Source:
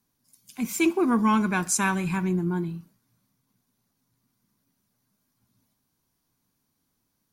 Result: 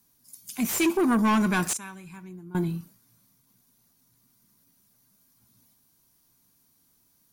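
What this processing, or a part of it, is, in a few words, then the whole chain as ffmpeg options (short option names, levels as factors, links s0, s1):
saturation between pre-emphasis and de-emphasis: -filter_complex "[0:a]aemphasis=mode=production:type=cd,asettb=1/sr,asplit=3[s0][s1][s2];[s0]atrim=end=1.734[s3];[s1]atrim=start=1.73:end=2.55,asetpts=PTS-STARTPTS,afade=t=in:d=0.004:c=qsin,afade=t=out:st=0.816:d=0.004:c=qsin,agate=range=0.0891:threshold=0.178:ratio=16:detection=peak[s4];[s2]atrim=start=2.546[s5];[s3][s4]acrossfade=d=0.004:c1=hsin:c2=qsin[s6];[s6][s5]acrossfade=d=0.004:c1=qsin:c2=hsin,highshelf=f=5900:g=11.5,asoftclip=type=tanh:threshold=0.0841,highshelf=f=5900:g=-11.5,volume=1.58"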